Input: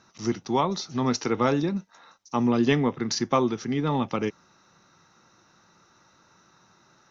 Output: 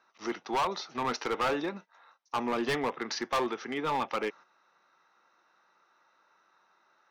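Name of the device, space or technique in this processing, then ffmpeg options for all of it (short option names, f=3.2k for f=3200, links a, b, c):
walkie-talkie: -af "highpass=570,lowpass=2.9k,asoftclip=type=hard:threshold=-28dB,agate=range=-8dB:threshold=-51dB:ratio=16:detection=peak,volume=3dB"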